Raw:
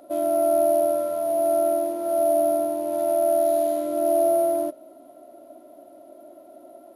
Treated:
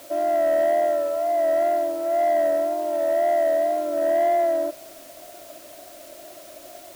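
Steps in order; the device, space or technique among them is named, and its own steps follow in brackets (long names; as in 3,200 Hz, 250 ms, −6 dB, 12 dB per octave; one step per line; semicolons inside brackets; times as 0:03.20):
tape answering machine (band-pass filter 390–2,800 Hz; soft clipping −17.5 dBFS, distortion −18 dB; tape wow and flutter; white noise bed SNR 24 dB)
level +3 dB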